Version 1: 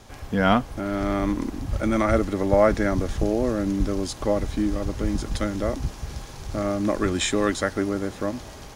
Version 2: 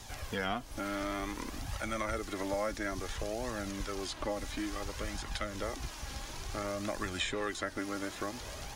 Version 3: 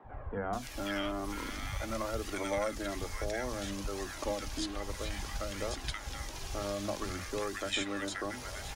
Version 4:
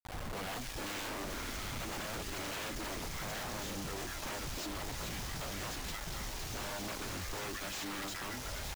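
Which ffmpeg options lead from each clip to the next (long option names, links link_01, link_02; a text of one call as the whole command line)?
ffmpeg -i in.wav -filter_complex "[0:a]flanger=delay=1:depth=2.8:regen=42:speed=0.57:shape=triangular,acrossover=split=680|3200[link_01][link_02][link_03];[link_01]acompressor=threshold=-39dB:ratio=4[link_04];[link_02]acompressor=threshold=-40dB:ratio=4[link_05];[link_03]acompressor=threshold=-58dB:ratio=4[link_06];[link_04][link_05][link_06]amix=inputs=3:normalize=0,highshelf=frequency=2300:gain=10.5" out.wav
ffmpeg -i in.wav -filter_complex "[0:a]acrossover=split=220|1400[link_01][link_02][link_03];[link_01]adelay=40[link_04];[link_03]adelay=530[link_05];[link_04][link_02][link_05]amix=inputs=3:normalize=0,volume=1.5dB" out.wav
ffmpeg -i in.wav -af "lowshelf=frequency=93:gain=5.5,aresample=16000,aeval=exprs='0.0158*(abs(mod(val(0)/0.0158+3,4)-2)-1)':channel_layout=same,aresample=44100,acrusher=bits=6:mix=0:aa=0.000001,volume=-1dB" out.wav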